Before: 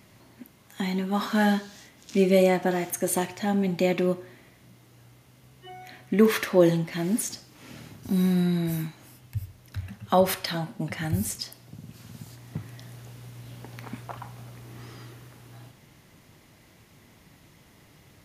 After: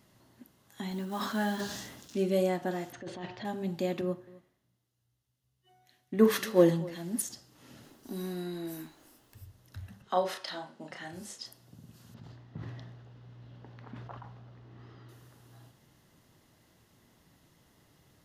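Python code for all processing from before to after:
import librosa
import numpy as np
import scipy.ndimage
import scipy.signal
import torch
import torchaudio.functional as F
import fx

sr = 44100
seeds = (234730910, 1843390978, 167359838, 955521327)

y = fx.chain(x, sr, fx.block_float(bits=5),
    fx.highpass(hz=45.0, slope=12),
    fx.sustainer(db_per_s=46.0), at=(0.91, 2.15))
y = fx.chain(y, sr, fx.lowpass(hz=4200.0, slope=24),
    fx.over_compress(threshold_db=-31.0, ratio=-1.0), at=(2.92, 3.45))
y = fx.chain(y, sr, fx.echo_single(ms=260, db=-14.5),
    fx.band_widen(depth_pct=70), at=(4.01, 7.22))
y = fx.low_shelf_res(y, sr, hz=200.0, db=-12.5, q=1.5, at=(7.82, 9.41), fade=0.02)
y = fx.dmg_noise_colour(y, sr, seeds[0], colour='pink', level_db=-60.0, at=(7.82, 9.41), fade=0.02)
y = fx.chain(y, sr, fx.bandpass_edges(low_hz=340.0, high_hz=6300.0),
    fx.doubler(ms=33.0, db=-5.0), at=(10.02, 11.46))
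y = fx.chain(y, sr, fx.air_absorb(metres=230.0),
    fx.sustainer(db_per_s=32.0), at=(12.14, 15.09))
y = fx.peak_eq(y, sr, hz=2300.0, db=-9.5, octaves=0.25)
y = fx.hum_notches(y, sr, base_hz=50, count=4)
y = y * 10.0 ** (-8.0 / 20.0)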